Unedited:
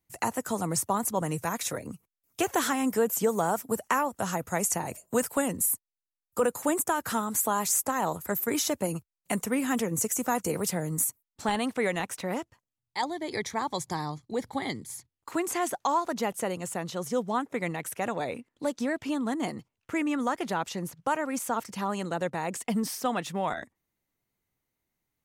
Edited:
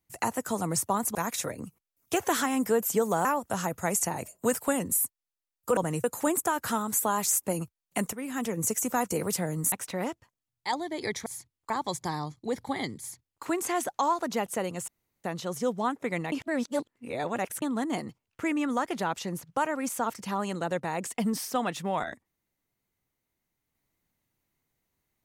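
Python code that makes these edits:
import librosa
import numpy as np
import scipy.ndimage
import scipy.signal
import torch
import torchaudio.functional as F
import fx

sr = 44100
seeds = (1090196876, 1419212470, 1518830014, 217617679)

y = fx.edit(x, sr, fx.move(start_s=1.15, length_s=0.27, to_s=6.46),
    fx.cut(start_s=3.52, length_s=0.42),
    fx.cut(start_s=7.86, length_s=0.92),
    fx.fade_in_from(start_s=9.47, length_s=0.53, floor_db=-12.5),
    fx.cut(start_s=11.06, length_s=0.96),
    fx.duplicate(start_s=14.85, length_s=0.44, to_s=13.56),
    fx.insert_room_tone(at_s=16.74, length_s=0.36),
    fx.reverse_span(start_s=17.82, length_s=1.3), tone=tone)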